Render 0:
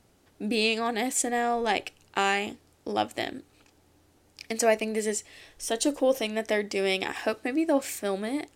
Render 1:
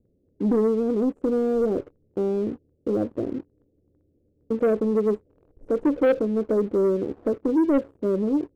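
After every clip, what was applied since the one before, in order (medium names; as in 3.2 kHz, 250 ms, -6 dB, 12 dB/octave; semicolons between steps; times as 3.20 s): elliptic low-pass 520 Hz, stop band 60 dB; waveshaping leveller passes 2; trim +2.5 dB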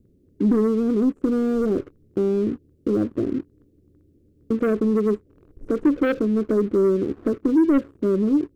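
high-order bell 660 Hz -8.5 dB 1.2 oct; in parallel at +2 dB: compression, threshold -33 dBFS, peak gain reduction 15 dB; on the sum: trim +1.5 dB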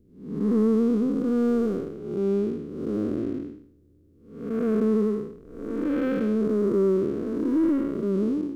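spectral blur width 298 ms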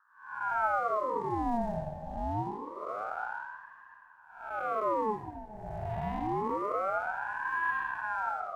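plate-style reverb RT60 3.2 s, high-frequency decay 0.75×, DRR 8 dB; ring modulator with a swept carrier 860 Hz, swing 55%, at 0.26 Hz; trim -7 dB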